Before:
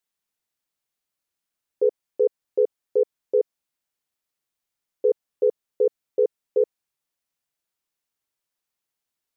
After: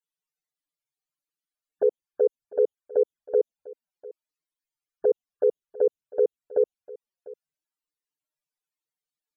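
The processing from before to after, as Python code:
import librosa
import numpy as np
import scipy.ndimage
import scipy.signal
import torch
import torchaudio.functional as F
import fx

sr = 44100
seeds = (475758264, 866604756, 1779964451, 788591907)

y = fx.env_flanger(x, sr, rest_ms=6.6, full_db=-20.0)
y = fx.spec_topn(y, sr, count=64)
y = y + 10.0 ** (-20.0 / 20.0) * np.pad(y, (int(699 * sr / 1000.0), 0))[:len(y)]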